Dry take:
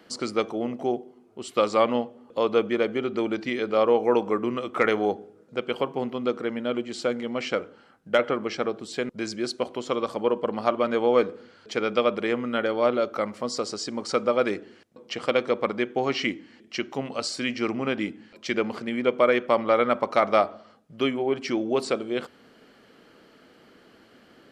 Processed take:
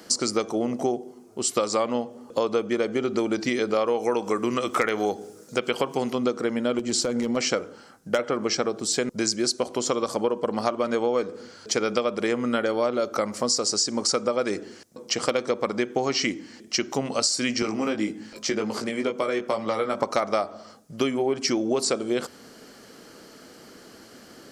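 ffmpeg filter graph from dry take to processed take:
-filter_complex "[0:a]asettb=1/sr,asplit=3[s0][s1][s2];[s0]atrim=end=3.764[s3];[s1]atrim=start=3.76:end=6.15,asetpts=PTS-STARTPTS,afade=t=in:d=0.004:c=qsin,afade=t=out:st=2.386:d=0.004:c=qsin,acrossover=split=3400[s4][s5];[s5]acompressor=threshold=0.00141:ratio=4:attack=1:release=60[s6];[s4][s6]amix=inputs=2:normalize=0,highshelf=f=2100:g=11.5,asoftclip=type=hard:threshold=0.562[s7];[s2]atrim=start=6.146[s8];[s3][s7]acrossfade=d=0.004:c1=hsin:c2=qsin[s9];[s9][s8]acrossfade=d=0.004:c1=qsin:c2=hsin,asettb=1/sr,asplit=3[s10][s11][s12];[s10]atrim=end=6.794[s13];[s11]atrim=start=6.79:end=7.37,asetpts=PTS-STARTPTS,afade=t=in:d=0.004:c=qsin,afade=t=out:st=0.576:d=0.004:c=qsin,lowshelf=f=360:g=6,acompressor=threshold=0.0501:ratio=10:attack=3.2:release=140:knee=1:detection=peak,asoftclip=type=hard:threshold=0.0631[s14];[s12]atrim=start=7.366[s15];[s13][s14]acrossfade=d=0.004:c1=hsin:c2=qsin[s16];[s16][s15]acrossfade=d=0.004:c1=qsin:c2=hsin,asettb=1/sr,asplit=3[s17][s18][s19];[s17]atrim=end=17.624[s20];[s18]atrim=start=17.62:end=20,asetpts=PTS-STARTPTS,afade=t=in:d=0.004:c=qsin,afade=t=out:st=2.376:d=0.004:c=qsin,acrossover=split=200|1300|2600[s21][s22][s23][s24];[s21]acompressor=threshold=0.00355:ratio=3[s25];[s22]acompressor=threshold=0.0251:ratio=3[s26];[s23]acompressor=threshold=0.00501:ratio=3[s27];[s24]acompressor=threshold=0.00447:ratio=3[s28];[s25][s26][s27][s28]amix=inputs=4:normalize=0,asplit=2[s29][s30];[s30]adelay=19,volume=0.631[s31];[s29][s31]amix=inputs=2:normalize=0,atrim=end_sample=104958[s32];[s19]atrim=start=19.996[s33];[s20][s32]acrossfade=d=0.004:c1=hsin:c2=qsin[s34];[s34][s33]acrossfade=d=0.004:c1=qsin:c2=hsin,highshelf=f=4300:t=q:w=1.5:g=10,acompressor=threshold=0.0447:ratio=6,volume=2.11"

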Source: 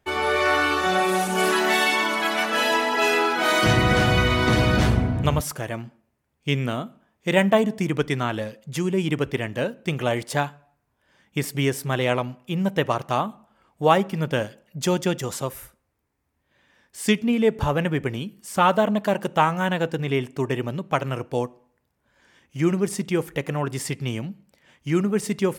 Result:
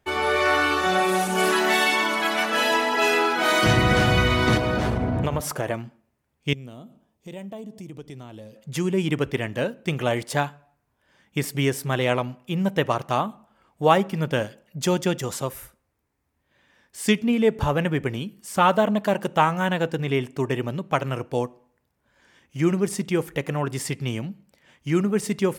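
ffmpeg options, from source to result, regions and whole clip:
-filter_complex "[0:a]asettb=1/sr,asplit=3[s0][s1][s2];[s0]atrim=end=4.574[s3];[s1]atrim=start=4.57:end=5.74,asetpts=PTS-STARTPTS,afade=t=in:d=0.004:c=qsin,afade=t=out:st=1.166:d=0.004:c=qsin,equalizer=f=620:w=0.45:g=8,acompressor=threshold=0.112:ratio=10:attack=3.2:release=140:knee=1:detection=peak[s4];[s2]atrim=start=5.736[s5];[s3][s4]acrossfade=d=0.004:c1=hsin:c2=qsin[s6];[s6][s5]acrossfade=d=0.004:c1=qsin:c2=hsin,asettb=1/sr,asplit=3[s7][s8][s9];[s7]atrim=end=6.534[s10];[s8]atrim=start=6.53:end=8.56,asetpts=PTS-STARTPTS,afade=t=in:d=0.004:c=qsin,afade=t=out:st=2.026:d=0.004:c=qsin,equalizer=f=1600:t=o:w=1.5:g=-12.5,acompressor=threshold=0.00794:ratio=2.5:attack=3.2:release=140:knee=1:detection=peak[s11];[s9]atrim=start=8.556[s12];[s10][s11]acrossfade=d=0.004:c1=hsin:c2=qsin[s13];[s13][s12]acrossfade=d=0.004:c1=qsin:c2=hsin"

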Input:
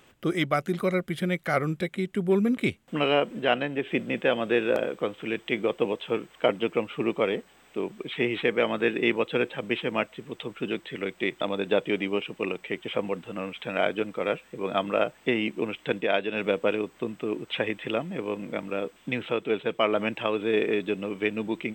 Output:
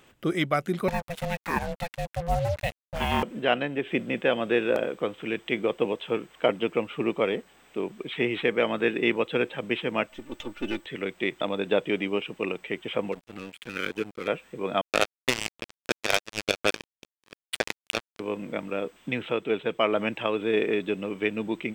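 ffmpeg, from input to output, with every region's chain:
-filter_complex "[0:a]asettb=1/sr,asplit=3[s0][s1][s2];[s0]atrim=end=0.884[s3];[s1]atrim=start=0.88:end=3.23,asetpts=PTS-STARTPTS,afade=t=in:d=0.004:c=qsin,afade=t=out:st=2.346:d=0.004:c=qsin,highpass=f=150:w=0.5412,highpass=f=150:w=1.3066,acrusher=bits=5:mix=0:aa=0.5,aeval=exprs='val(0)*sin(2*PI*340*n/s)':c=same[s4];[s2]atrim=start=3.226[s5];[s3][s4]acrossfade=d=0.004:c1=hsin:c2=qsin[s6];[s6][s5]acrossfade=d=0.004:c1=qsin:c2=hsin,asettb=1/sr,asplit=3[s7][s8][s9];[s7]atrim=end=10.094[s10];[s8]atrim=start=10.09:end=10.86,asetpts=PTS-STARTPTS,afade=t=in:d=0.004:c=qsin,afade=t=out:st=0.766:d=0.004:c=qsin,aeval=exprs='if(lt(val(0),0),0.447*val(0),val(0))':c=same,aecho=1:1:3.4:0.77,atrim=end_sample=33957[s11];[s9]atrim=start=10.856[s12];[s10][s11]acrossfade=d=0.004:c1=hsin:c2=qsin[s13];[s13][s12]acrossfade=d=0.004:c1=qsin:c2=hsin,asettb=1/sr,asplit=3[s14][s15][s16];[s14]atrim=end=13.124[s17];[s15]atrim=start=13.12:end=14.28,asetpts=PTS-STARTPTS,afade=t=in:d=0.004:c=qsin,afade=t=out:st=1.156:d=0.004:c=qsin,asuperstop=centerf=780:order=8:qfactor=1,aeval=exprs='sgn(val(0))*max(abs(val(0))-0.0106,0)':c=same[s18];[s16]atrim=start=14.276[s19];[s17][s18]acrossfade=d=0.004:c1=hsin:c2=qsin[s20];[s20][s19]acrossfade=d=0.004:c1=qsin:c2=hsin,asettb=1/sr,asplit=3[s21][s22][s23];[s21]atrim=end=14.814[s24];[s22]atrim=start=14.81:end=18.2,asetpts=PTS-STARTPTS,afade=t=in:d=0.004:c=qsin,afade=t=out:st=3.386:d=0.004:c=qsin,equalizer=f=8500:t=o:w=2:g=14.5,bandreject=f=50:t=h:w=6,bandreject=f=100:t=h:w=6,bandreject=f=150:t=h:w=6,bandreject=f=200:t=h:w=6,bandreject=f=250:t=h:w=6,bandreject=f=300:t=h:w=6,bandreject=f=350:t=h:w=6,acrusher=bits=2:mix=0:aa=0.5[s25];[s23]atrim=start=18.196[s26];[s24][s25]acrossfade=d=0.004:c1=hsin:c2=qsin[s27];[s27][s26]acrossfade=d=0.004:c1=qsin:c2=hsin"

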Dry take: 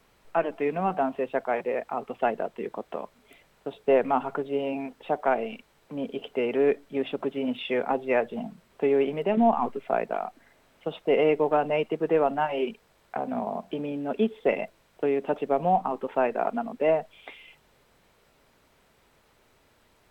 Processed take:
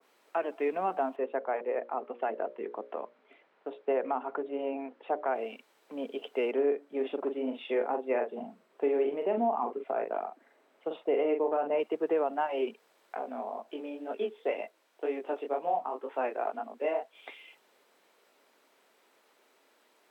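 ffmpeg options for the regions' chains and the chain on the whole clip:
-filter_complex "[0:a]asettb=1/sr,asplit=3[s0][s1][s2];[s0]atrim=end=1.164[s3];[s1]atrim=start=1.16:end=5.35,asetpts=PTS-STARTPTS,afade=t=in:d=0.004:c=qsin,afade=t=out:st=4.186:d=0.004:c=qsin,lowpass=2300,bandreject=f=60:t=h:w=6,bandreject=f=120:t=h:w=6,bandreject=f=180:t=h:w=6,bandreject=f=240:t=h:w=6,bandreject=f=300:t=h:w=6,bandreject=f=360:t=h:w=6,bandreject=f=420:t=h:w=6,bandreject=f=480:t=h:w=6,bandreject=f=540:t=h:w=6,bandreject=f=600:t=h:w=6[s4];[s2]atrim=start=5.346[s5];[s3][s4]acrossfade=d=0.004:c1=hsin:c2=qsin[s6];[s6][s5]acrossfade=d=0.004:c1=qsin:c2=hsin,asettb=1/sr,asplit=3[s7][s8][s9];[s7]atrim=end=6.514[s10];[s8]atrim=start=6.51:end=11.8,asetpts=PTS-STARTPTS,afade=t=in:d=0.004:c=qsin,afade=t=out:st=5.286:d=0.004:c=qsin,highshelf=f=2300:g=-11,asplit=2[s11][s12];[s12]adelay=42,volume=0.501[s13];[s11][s13]amix=inputs=2:normalize=0,atrim=end_sample=233289[s14];[s9]atrim=start=11.796[s15];[s10][s14]acrossfade=d=0.004:c1=hsin:c2=qsin[s16];[s16][s15]acrossfade=d=0.004:c1=qsin:c2=hsin,asettb=1/sr,asplit=3[s17][s18][s19];[s17]atrim=end=13.154[s20];[s18]atrim=start=13.15:end=17.15,asetpts=PTS-STARTPTS,afade=t=in:d=0.004:c=qsin,afade=t=out:st=3.996:d=0.004:c=qsin,highpass=240,flanger=delay=18:depth=6.5:speed=2[s21];[s19]atrim=start=17.146[s22];[s20][s21]acrossfade=d=0.004:c1=hsin:c2=qsin[s23];[s23][s22]acrossfade=d=0.004:c1=qsin:c2=hsin,highpass=f=280:w=0.5412,highpass=f=280:w=1.3066,alimiter=limit=0.141:level=0:latency=1:release=137,adynamicequalizer=threshold=0.00794:dfrequency=1700:dqfactor=0.7:tfrequency=1700:tqfactor=0.7:attack=5:release=100:ratio=0.375:range=2:mode=cutabove:tftype=highshelf,volume=0.75"

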